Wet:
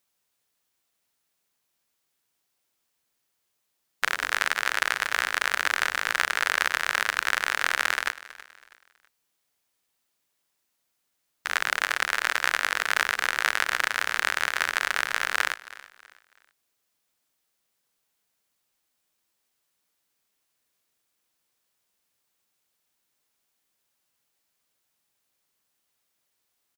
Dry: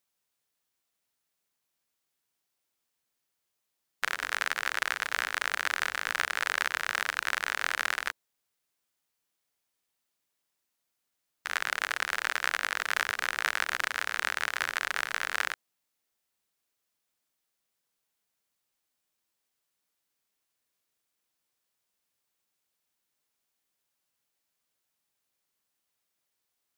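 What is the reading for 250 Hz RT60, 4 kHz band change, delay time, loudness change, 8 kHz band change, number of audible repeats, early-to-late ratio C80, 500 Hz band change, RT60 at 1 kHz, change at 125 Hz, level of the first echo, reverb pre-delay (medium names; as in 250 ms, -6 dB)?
no reverb, +5.0 dB, 324 ms, +5.0 dB, +5.0 dB, 2, no reverb, +5.0 dB, no reverb, no reading, -18.5 dB, no reverb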